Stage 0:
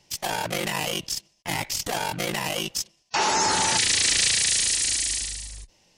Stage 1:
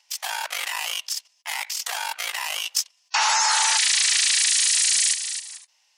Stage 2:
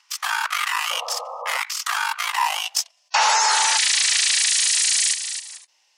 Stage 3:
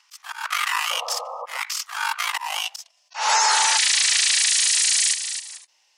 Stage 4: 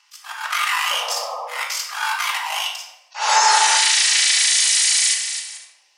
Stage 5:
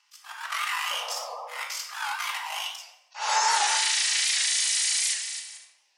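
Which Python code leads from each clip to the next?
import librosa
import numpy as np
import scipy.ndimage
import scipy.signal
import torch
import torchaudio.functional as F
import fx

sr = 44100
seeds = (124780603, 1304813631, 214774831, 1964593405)

y1 = scipy.signal.sosfilt(scipy.signal.cheby2(4, 80, 150.0, 'highpass', fs=sr, output='sos'), x)
y1 = fx.level_steps(y1, sr, step_db=9)
y1 = y1 * librosa.db_to_amplitude(7.0)
y2 = fx.high_shelf(y1, sr, hz=12000.0, db=-5.0)
y2 = fx.filter_sweep_highpass(y2, sr, from_hz=1200.0, to_hz=330.0, start_s=2.08, end_s=3.8, q=5.3)
y2 = fx.spec_paint(y2, sr, seeds[0], shape='noise', start_s=0.9, length_s=0.68, low_hz=470.0, high_hz=1300.0, level_db=-34.0)
y2 = y2 * librosa.db_to_amplitude(1.5)
y3 = fx.auto_swell(y2, sr, attack_ms=195.0)
y4 = fx.room_shoebox(y3, sr, seeds[1], volume_m3=340.0, walls='mixed', distance_m=1.3)
y5 = fx.record_warp(y4, sr, rpm=78.0, depth_cents=100.0)
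y5 = y5 * librosa.db_to_amplitude(-8.5)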